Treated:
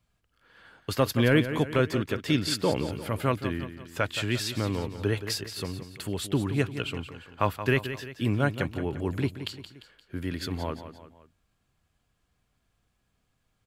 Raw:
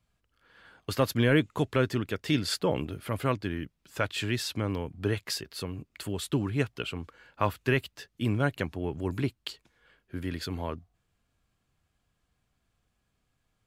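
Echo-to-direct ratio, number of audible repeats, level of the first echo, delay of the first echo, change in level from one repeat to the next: -10.0 dB, 3, -11.0 dB, 0.174 s, -6.5 dB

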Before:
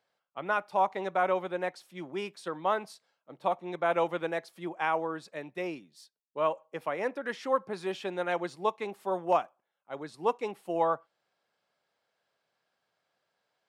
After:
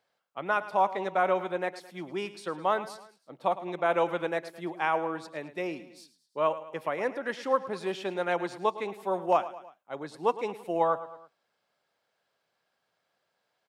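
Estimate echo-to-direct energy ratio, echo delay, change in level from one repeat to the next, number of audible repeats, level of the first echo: -14.0 dB, 0.108 s, -6.0 dB, 3, -15.0 dB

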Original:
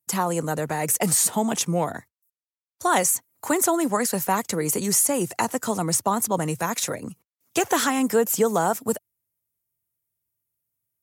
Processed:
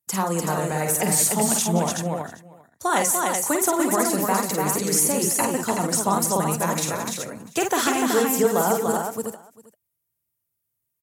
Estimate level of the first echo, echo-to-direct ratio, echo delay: -6.0 dB, 0.0 dB, 47 ms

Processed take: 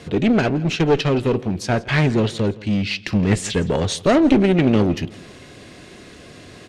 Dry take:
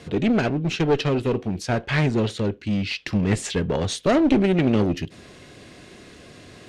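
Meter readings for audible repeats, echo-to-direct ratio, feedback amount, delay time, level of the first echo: 2, -20.0 dB, 39%, 0.167 s, -20.5 dB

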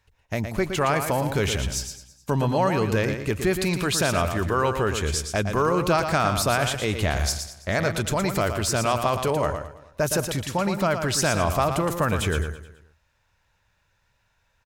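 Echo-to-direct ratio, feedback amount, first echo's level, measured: -7.0 dB, no steady repeat, -7.5 dB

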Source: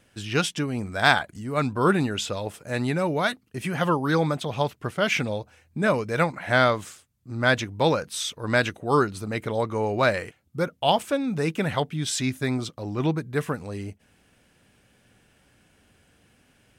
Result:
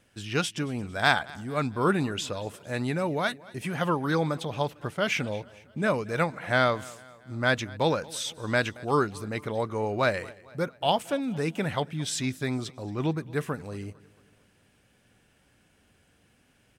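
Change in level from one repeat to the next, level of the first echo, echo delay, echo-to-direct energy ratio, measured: -6.0 dB, -22.0 dB, 0.226 s, -20.5 dB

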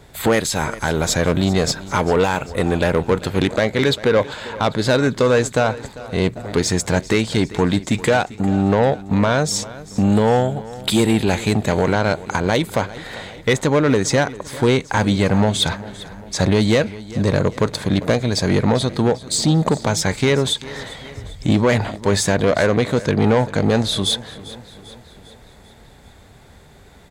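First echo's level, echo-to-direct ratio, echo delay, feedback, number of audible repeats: -18.0 dB, -16.5 dB, 0.396 s, 54%, 4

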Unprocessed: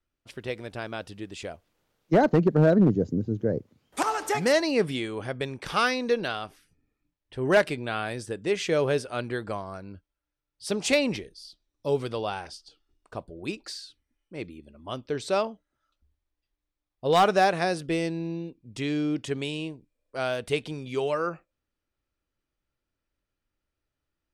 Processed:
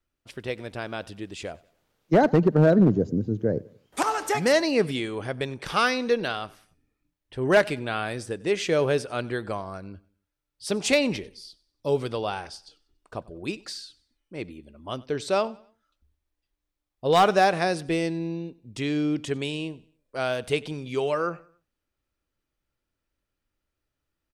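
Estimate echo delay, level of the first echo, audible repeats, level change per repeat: 94 ms, -22.5 dB, 2, -8.5 dB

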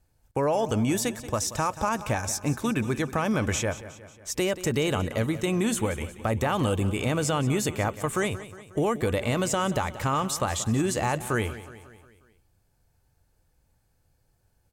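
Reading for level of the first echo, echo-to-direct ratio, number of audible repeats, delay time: -15.0 dB, -13.5 dB, 4, 0.181 s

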